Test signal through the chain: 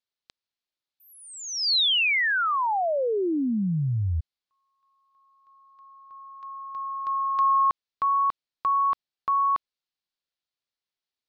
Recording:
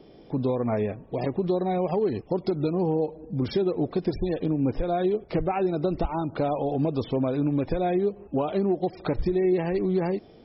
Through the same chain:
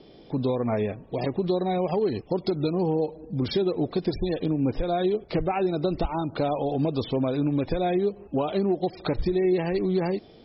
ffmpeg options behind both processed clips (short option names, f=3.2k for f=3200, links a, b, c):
-filter_complex "[0:a]acrossover=split=2800[a][b];[b]acompressor=threshold=-31dB:ratio=4:attack=1:release=60[c];[a][c]amix=inputs=2:normalize=0,lowpass=f=4.3k:t=q:w=2.4"